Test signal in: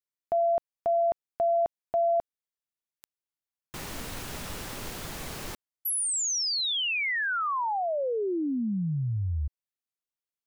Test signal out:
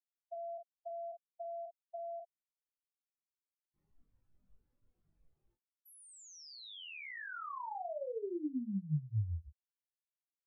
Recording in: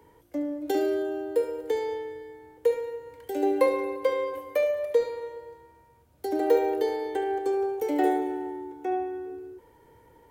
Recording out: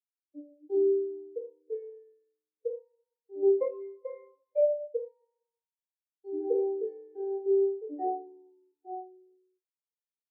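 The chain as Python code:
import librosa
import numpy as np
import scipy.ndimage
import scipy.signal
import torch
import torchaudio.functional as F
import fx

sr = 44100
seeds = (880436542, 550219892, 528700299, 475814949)

y = fx.room_early_taps(x, sr, ms=(20, 46), db=(-4.5, -5.0))
y = fx.spectral_expand(y, sr, expansion=2.5)
y = F.gain(torch.from_numpy(y), -7.5).numpy()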